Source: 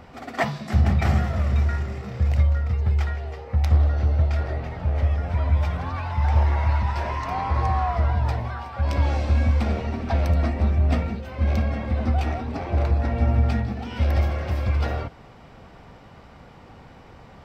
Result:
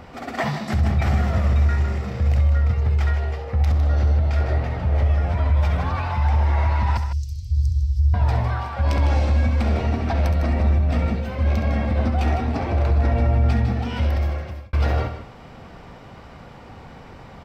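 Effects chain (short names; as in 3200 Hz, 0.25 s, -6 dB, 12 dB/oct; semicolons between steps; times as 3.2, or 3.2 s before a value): 3.67–4.14 tone controls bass 0 dB, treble +4 dB; 6.97–8.14 inverse Chebyshev band-stop 410–1300 Hz, stop band 80 dB; limiter -17.5 dBFS, peak gain reduction 9.5 dB; loudspeakers at several distances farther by 23 m -10 dB, 53 m -10 dB; 13.96–14.73 fade out; gain +4 dB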